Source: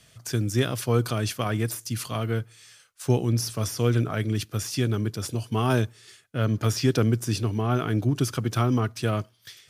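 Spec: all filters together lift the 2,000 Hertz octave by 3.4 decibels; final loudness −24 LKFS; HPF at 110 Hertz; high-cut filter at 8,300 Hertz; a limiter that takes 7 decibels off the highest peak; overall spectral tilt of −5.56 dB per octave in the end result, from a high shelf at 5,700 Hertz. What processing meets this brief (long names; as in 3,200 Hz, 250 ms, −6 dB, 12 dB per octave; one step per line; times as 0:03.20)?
high-pass filter 110 Hz
low-pass filter 8,300 Hz
parametric band 2,000 Hz +5.5 dB
high-shelf EQ 5,700 Hz −6 dB
level +5 dB
brickwall limiter −11.5 dBFS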